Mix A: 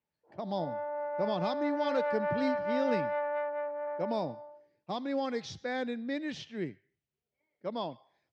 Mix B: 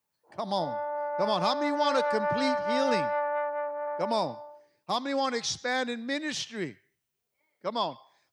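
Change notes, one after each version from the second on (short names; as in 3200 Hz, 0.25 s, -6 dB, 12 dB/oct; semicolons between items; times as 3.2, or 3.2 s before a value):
speech: remove tape spacing loss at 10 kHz 27 dB; master: add bell 1100 Hz +8 dB 1.1 oct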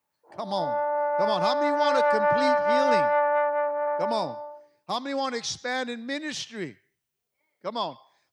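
background +6.5 dB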